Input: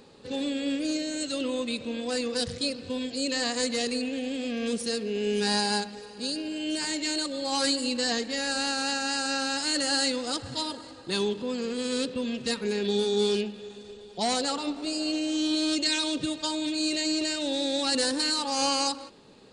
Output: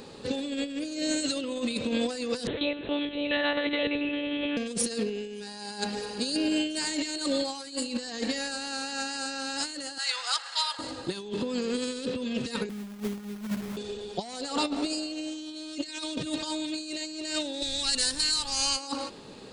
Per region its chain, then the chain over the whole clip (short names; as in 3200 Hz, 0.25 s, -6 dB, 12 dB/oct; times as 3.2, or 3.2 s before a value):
2.47–4.57 monotone LPC vocoder at 8 kHz 290 Hz + HPF 200 Hz 6 dB/oct
9.98–10.79 HPF 1000 Hz 24 dB/oct + high shelf 5000 Hz -9.5 dB
12.69–13.77 synth low-pass 190 Hz, resonance Q 2.3 + companded quantiser 4-bit
17.61–18.76 passive tone stack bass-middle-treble 5-5-5 + added noise brown -53 dBFS
whole clip: high shelf 8500 Hz +3 dB; negative-ratio compressor -33 dBFS, ratio -0.5; gain +3 dB